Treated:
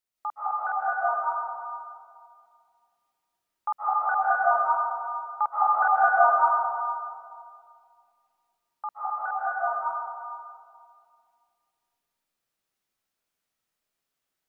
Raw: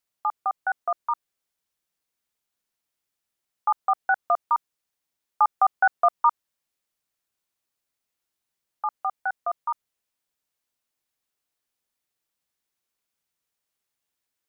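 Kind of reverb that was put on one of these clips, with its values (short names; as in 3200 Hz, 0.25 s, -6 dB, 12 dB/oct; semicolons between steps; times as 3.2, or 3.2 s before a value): digital reverb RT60 2.2 s, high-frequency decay 0.45×, pre-delay 0.11 s, DRR -8.5 dB; gain -6.5 dB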